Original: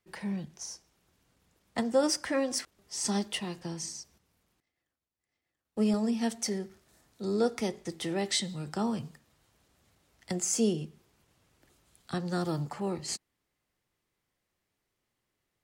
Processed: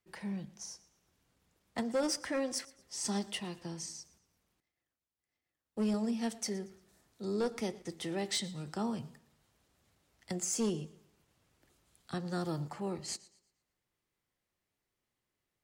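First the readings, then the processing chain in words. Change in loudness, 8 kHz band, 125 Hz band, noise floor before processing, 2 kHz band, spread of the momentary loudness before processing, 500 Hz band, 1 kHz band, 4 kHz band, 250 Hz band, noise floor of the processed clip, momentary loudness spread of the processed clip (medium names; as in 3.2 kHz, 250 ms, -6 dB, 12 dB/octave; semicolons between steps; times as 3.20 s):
-5.0 dB, -4.5 dB, -4.5 dB, under -85 dBFS, -4.5 dB, 13 LU, -5.5 dB, -5.0 dB, -4.5 dB, -5.0 dB, under -85 dBFS, 12 LU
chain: hard clipper -22 dBFS, distortion -18 dB; modulated delay 116 ms, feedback 36%, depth 58 cents, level -20.5 dB; trim -4.5 dB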